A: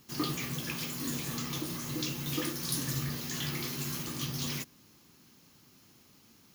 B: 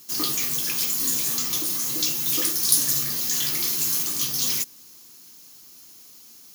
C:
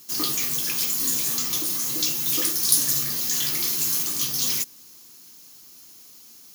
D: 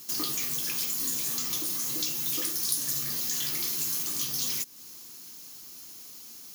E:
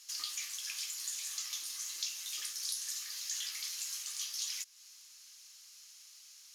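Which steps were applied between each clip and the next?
tone controls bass -9 dB, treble +14 dB; trim +3 dB
no audible change
compression 2.5:1, threshold -33 dBFS, peak gain reduction 13 dB; trim +2 dB
Butterworth band-pass 3.9 kHz, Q 0.55; trim -5 dB

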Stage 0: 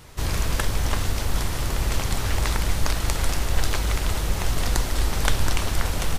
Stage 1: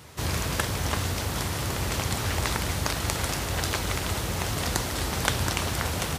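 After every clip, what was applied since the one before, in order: high-pass 71 Hz 24 dB/octave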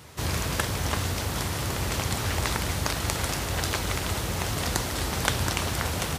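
no audible change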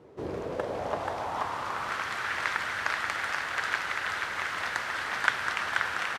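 delay 482 ms -3.5 dB; band-pass sweep 400 Hz -> 1.6 kHz, 0.24–2.15 s; trim +5.5 dB

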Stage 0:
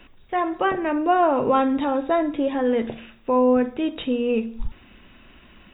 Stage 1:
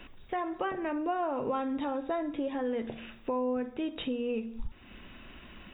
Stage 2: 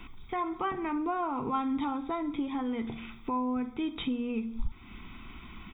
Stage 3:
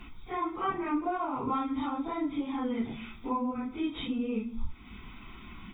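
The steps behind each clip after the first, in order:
compression 2.5:1, threshold -35 dBFS, peak gain reduction 14 dB
comb 0.9 ms, depth 83%
phase randomisation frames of 100 ms

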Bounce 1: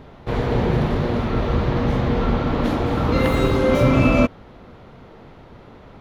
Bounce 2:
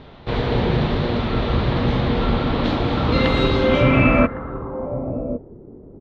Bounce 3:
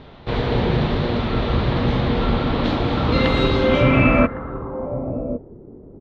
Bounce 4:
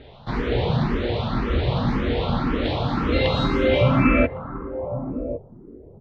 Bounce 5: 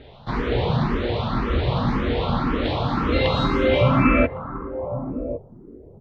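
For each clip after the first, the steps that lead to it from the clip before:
echo from a far wall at 190 m, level -12 dB; low-pass sweep 3.9 kHz -> 370 Hz, 3.60–5.56 s
no audible change
barber-pole phaser +1.9 Hz
dynamic bell 1.1 kHz, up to +4 dB, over -42 dBFS, Q 2.3

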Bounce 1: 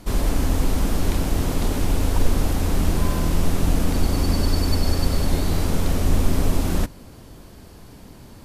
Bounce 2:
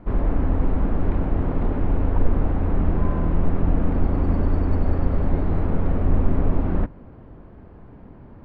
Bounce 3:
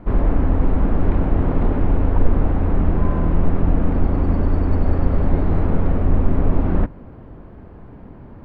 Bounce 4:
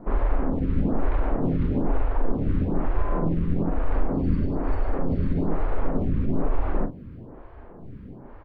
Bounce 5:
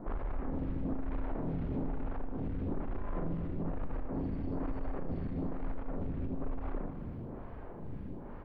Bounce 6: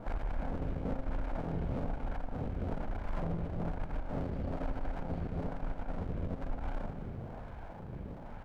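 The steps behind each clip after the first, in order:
Bessel low-pass 1.3 kHz, order 4
gain riding 0.5 s; trim +3.5 dB
peak limiter -11 dBFS, peak gain reduction 9.5 dB; doubling 42 ms -7.5 dB; lamp-driven phase shifter 1.1 Hz
compression, threshold -26 dBFS, peak gain reduction 11.5 dB; saturation -28 dBFS, distortion -13 dB; on a send: multi-head delay 79 ms, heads first and third, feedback 58%, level -11.5 dB; on the sum: trim -2 dB
comb filter that takes the minimum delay 1.3 ms; trim +1.5 dB

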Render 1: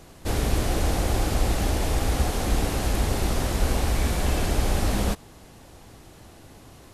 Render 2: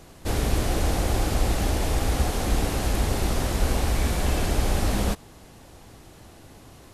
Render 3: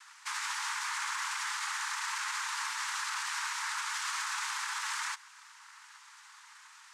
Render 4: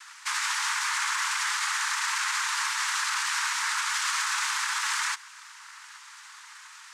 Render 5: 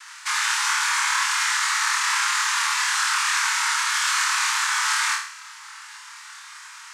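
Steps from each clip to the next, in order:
no audible change
noise-vocoded speech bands 3; steep high-pass 870 Hz 96 dB/octave; peak limiter -26 dBFS, peak gain reduction 6.5 dB
high-pass 950 Hz 12 dB/octave; trim +8 dB
flutter echo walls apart 4.5 m, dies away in 0.52 s; trim +3 dB

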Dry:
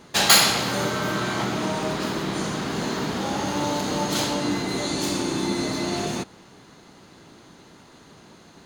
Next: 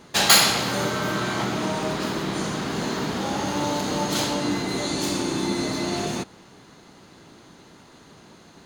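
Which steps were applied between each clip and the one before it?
no audible change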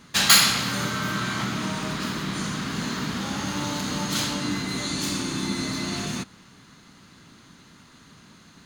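high-order bell 540 Hz -9 dB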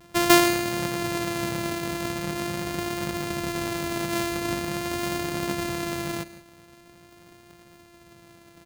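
sorted samples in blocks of 128 samples; delay 163 ms -16 dB; vibrato 0.44 Hz 15 cents; trim -1 dB

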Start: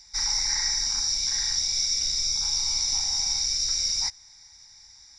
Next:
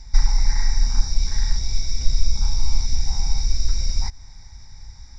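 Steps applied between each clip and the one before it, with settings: compression, threshold -29 dBFS, peak gain reduction 7.5 dB; time-frequency box 2.86–3.07 s, 540–1400 Hz -9 dB; tilt EQ -4.5 dB/octave; trim +8.5 dB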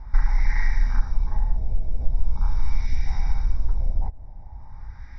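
compression 1.5:1, threshold -24 dBFS, peak gain reduction 6.5 dB; LFO low-pass sine 0.42 Hz 610–2100 Hz; trim +2.5 dB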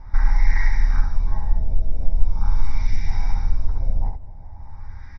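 early reflections 11 ms -3.5 dB, 70 ms -4 dB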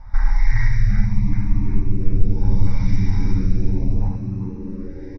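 frequency-shifting echo 374 ms, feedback 53%, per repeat +90 Hz, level -11 dB; LFO notch saw up 0.75 Hz 320–1600 Hz; spectral replace 1.07–1.71 s, 430–1300 Hz after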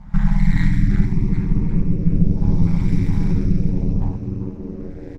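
AM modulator 170 Hz, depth 60%; sliding maximum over 5 samples; trim +3 dB

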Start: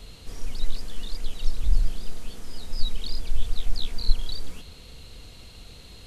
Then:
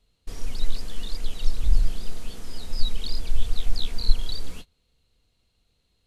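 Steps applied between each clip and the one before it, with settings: gate -34 dBFS, range -26 dB; trim +1.5 dB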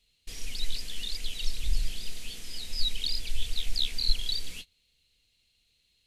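resonant high shelf 1.7 kHz +11.5 dB, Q 1.5; trim -8.5 dB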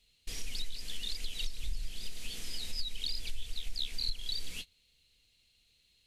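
compression 5:1, threshold -31 dBFS, peak gain reduction 15 dB; trim +1 dB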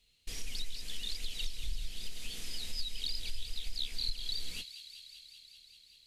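feedback echo behind a high-pass 193 ms, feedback 80%, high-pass 2.3 kHz, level -11 dB; trim -1 dB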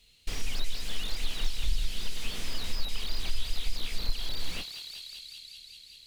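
slew-rate limiter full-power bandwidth 18 Hz; trim +9 dB

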